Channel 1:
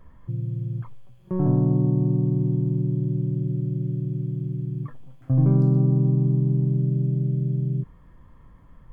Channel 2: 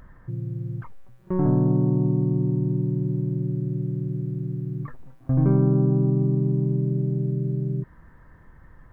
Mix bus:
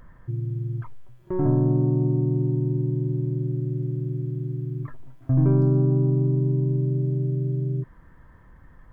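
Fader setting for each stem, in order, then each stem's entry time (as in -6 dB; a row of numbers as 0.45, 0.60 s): -5.0, -2.0 dB; 0.00, 0.00 s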